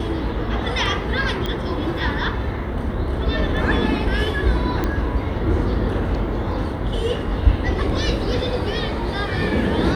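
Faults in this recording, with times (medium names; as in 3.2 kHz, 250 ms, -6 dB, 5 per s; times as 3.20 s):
1.46 s: pop -12 dBFS
4.84 s: pop -10 dBFS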